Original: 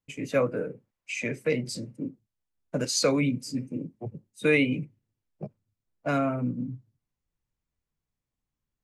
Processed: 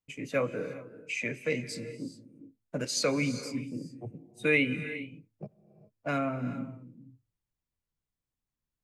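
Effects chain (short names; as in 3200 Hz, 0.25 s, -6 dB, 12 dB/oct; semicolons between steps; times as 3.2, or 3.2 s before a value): non-linear reverb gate 0.44 s rising, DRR 12 dB; dynamic EQ 2200 Hz, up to +5 dB, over -46 dBFS, Q 1.2; gain -5 dB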